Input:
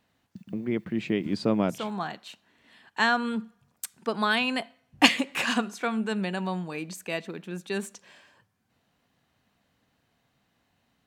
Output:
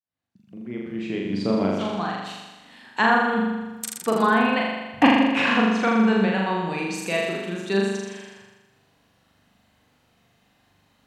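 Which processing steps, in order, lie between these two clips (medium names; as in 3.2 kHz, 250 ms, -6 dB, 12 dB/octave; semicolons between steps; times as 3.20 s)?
fade-in on the opening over 2.83 s; low-pass that closes with the level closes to 1.3 kHz, closed at -21 dBFS; flutter echo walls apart 7 m, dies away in 1.2 s; trim +4.5 dB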